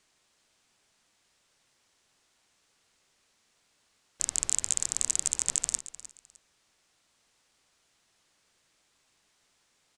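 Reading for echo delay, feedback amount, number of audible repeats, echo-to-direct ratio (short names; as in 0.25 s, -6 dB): 0.305 s, 24%, 2, -15.5 dB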